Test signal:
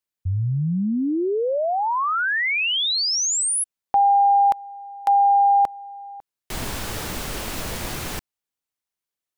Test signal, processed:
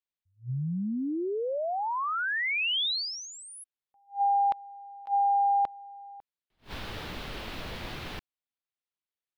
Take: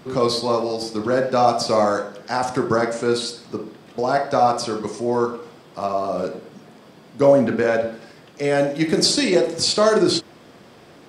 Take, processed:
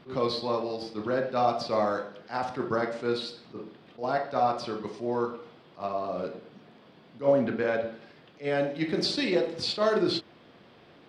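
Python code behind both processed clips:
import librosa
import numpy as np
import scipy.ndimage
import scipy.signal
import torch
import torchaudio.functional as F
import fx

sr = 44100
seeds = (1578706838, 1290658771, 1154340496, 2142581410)

y = fx.high_shelf_res(x, sr, hz=5300.0, db=-12.5, q=1.5)
y = fx.attack_slew(y, sr, db_per_s=270.0)
y = y * 10.0 ** (-8.5 / 20.0)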